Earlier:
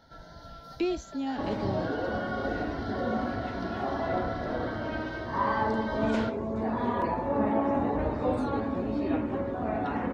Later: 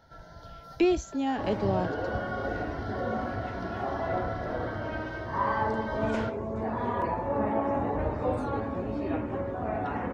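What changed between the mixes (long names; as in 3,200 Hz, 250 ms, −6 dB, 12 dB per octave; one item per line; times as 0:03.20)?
speech +7.0 dB
master: add graphic EQ with 15 bands 100 Hz +3 dB, 250 Hz −5 dB, 4,000 Hz −6 dB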